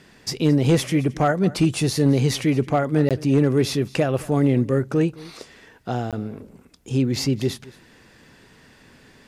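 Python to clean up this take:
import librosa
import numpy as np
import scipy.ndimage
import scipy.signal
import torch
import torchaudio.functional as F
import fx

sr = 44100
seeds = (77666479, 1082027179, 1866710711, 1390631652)

y = fx.fix_declip(x, sr, threshold_db=-10.0)
y = fx.fix_interpolate(y, sr, at_s=(3.09, 6.11), length_ms=17.0)
y = fx.fix_echo_inverse(y, sr, delay_ms=219, level_db=-21.0)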